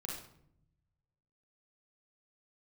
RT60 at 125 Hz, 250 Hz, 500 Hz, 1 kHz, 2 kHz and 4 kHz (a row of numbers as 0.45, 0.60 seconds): 1.8, 1.2, 0.80, 0.60, 0.55, 0.45 seconds